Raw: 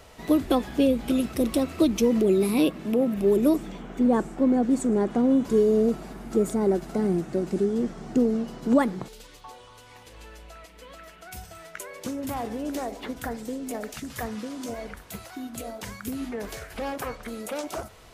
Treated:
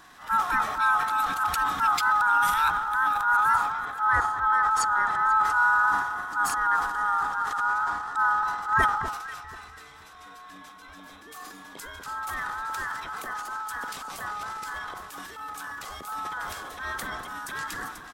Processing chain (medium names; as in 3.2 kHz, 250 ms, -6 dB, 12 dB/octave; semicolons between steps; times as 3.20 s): split-band scrambler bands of 1 kHz; harmony voices -7 st -6 dB; echo whose repeats swap between lows and highs 244 ms, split 1.3 kHz, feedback 52%, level -9 dB; transient shaper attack -7 dB, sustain +8 dB; trim -2.5 dB